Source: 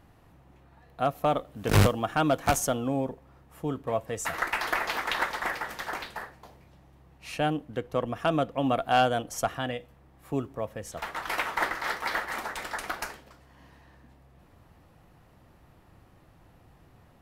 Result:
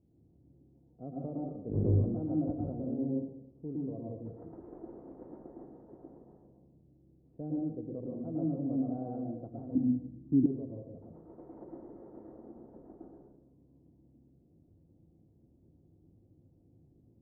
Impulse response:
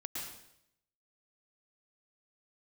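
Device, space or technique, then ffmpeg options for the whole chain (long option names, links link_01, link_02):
next room: -filter_complex "[0:a]highpass=frequency=120:poles=1,lowpass=frequency=420:width=0.5412,lowpass=frequency=420:width=1.3066[link_01];[1:a]atrim=start_sample=2205[link_02];[link_01][link_02]afir=irnorm=-1:irlink=0,asettb=1/sr,asplit=3[link_03][link_04][link_05];[link_03]atrim=end=9.754[link_06];[link_04]atrim=start=9.75:end=10.46,asetpts=PTS-STARTPTS,afade=type=in:duration=0.004:curve=qsin,afade=type=out:start_time=0.706:duration=0.004:curve=qsin,lowshelf=frequency=360:width_type=q:width=3:gain=9[link_07];[link_05]atrim=start=10.456[link_08];[link_06][link_07]acrossfade=duration=0.004:curve1=hsin:curve2=qsin[link_09];[link_09][link_08]acrossfade=duration=0.004:curve1=qsin:curve2=hsin,volume=-3dB"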